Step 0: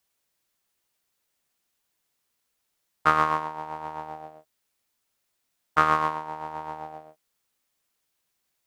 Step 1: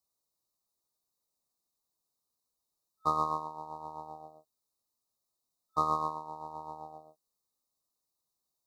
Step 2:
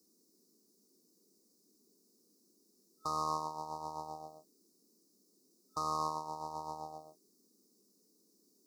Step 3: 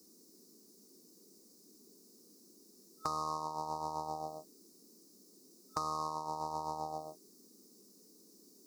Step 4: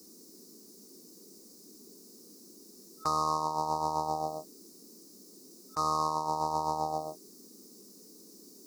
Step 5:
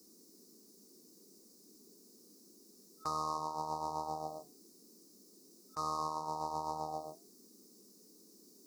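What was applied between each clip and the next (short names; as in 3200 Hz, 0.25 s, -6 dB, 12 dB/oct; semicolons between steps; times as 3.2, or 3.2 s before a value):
FFT band-reject 1300–3600 Hz; gain -7.5 dB
resonant high shelf 4000 Hz +9 dB, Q 3; limiter -23.5 dBFS, peak gain reduction 11.5 dB; band noise 190–430 Hz -76 dBFS; gain +1 dB
compressor 5:1, threshold -44 dBFS, peak gain reduction 12.5 dB; gain +9.5 dB
attack slew limiter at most 550 dB/s; gain +8 dB
flange 1.9 Hz, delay 8.2 ms, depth 2.2 ms, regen -82%; gain -3 dB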